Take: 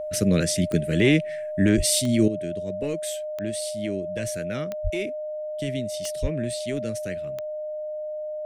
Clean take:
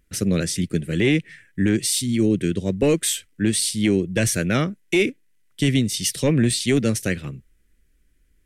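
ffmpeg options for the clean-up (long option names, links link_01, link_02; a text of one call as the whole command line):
ffmpeg -i in.wav -filter_complex "[0:a]adeclick=threshold=4,bandreject=frequency=610:width=30,asplit=3[link_01][link_02][link_03];[link_01]afade=type=out:start_time=1.76:duration=0.02[link_04];[link_02]highpass=frequency=140:width=0.5412,highpass=frequency=140:width=1.3066,afade=type=in:start_time=1.76:duration=0.02,afade=type=out:start_time=1.88:duration=0.02[link_05];[link_03]afade=type=in:start_time=1.88:duration=0.02[link_06];[link_04][link_05][link_06]amix=inputs=3:normalize=0,asplit=3[link_07][link_08][link_09];[link_07]afade=type=out:start_time=4.83:duration=0.02[link_10];[link_08]highpass=frequency=140:width=0.5412,highpass=frequency=140:width=1.3066,afade=type=in:start_time=4.83:duration=0.02,afade=type=out:start_time=4.95:duration=0.02[link_11];[link_09]afade=type=in:start_time=4.95:duration=0.02[link_12];[link_10][link_11][link_12]amix=inputs=3:normalize=0,asplit=3[link_13][link_14][link_15];[link_13]afade=type=out:start_time=6.21:duration=0.02[link_16];[link_14]highpass=frequency=140:width=0.5412,highpass=frequency=140:width=1.3066,afade=type=in:start_time=6.21:duration=0.02,afade=type=out:start_time=6.33:duration=0.02[link_17];[link_15]afade=type=in:start_time=6.33:duration=0.02[link_18];[link_16][link_17][link_18]amix=inputs=3:normalize=0,asetnsamples=nb_out_samples=441:pad=0,asendcmd='2.28 volume volume 11.5dB',volume=0dB" out.wav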